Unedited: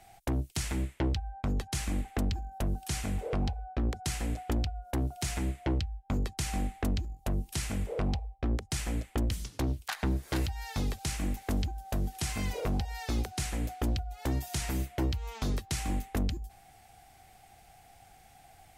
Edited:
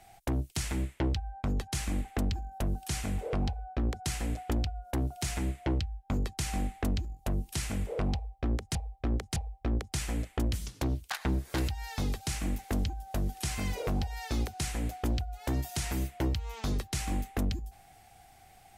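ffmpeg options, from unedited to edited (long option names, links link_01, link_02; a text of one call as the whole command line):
ffmpeg -i in.wav -filter_complex "[0:a]asplit=3[link_01][link_02][link_03];[link_01]atrim=end=8.752[link_04];[link_02]atrim=start=8.138:end=8.752[link_05];[link_03]atrim=start=8.138[link_06];[link_04][link_05]acrossfade=duration=0.004:curve1=hsin:curve2=hsin[link_07];[link_07][link_06]acrossfade=duration=0.004:curve1=hsin:curve2=hsin" out.wav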